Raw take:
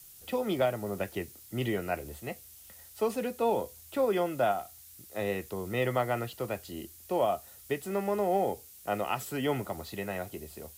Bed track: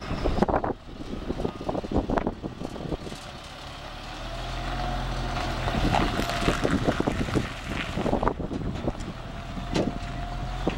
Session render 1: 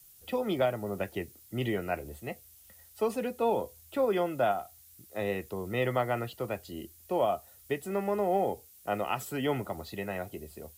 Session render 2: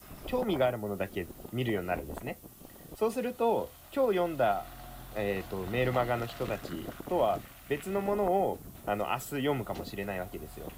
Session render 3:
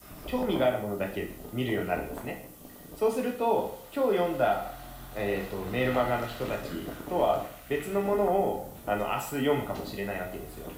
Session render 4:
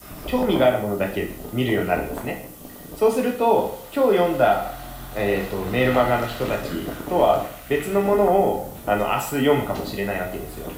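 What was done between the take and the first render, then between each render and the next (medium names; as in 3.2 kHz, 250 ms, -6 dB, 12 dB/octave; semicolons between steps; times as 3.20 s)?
noise reduction 6 dB, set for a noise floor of -52 dBFS
add bed track -17.5 dB
plate-style reverb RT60 0.58 s, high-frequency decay 0.9×, DRR 1 dB
trim +8 dB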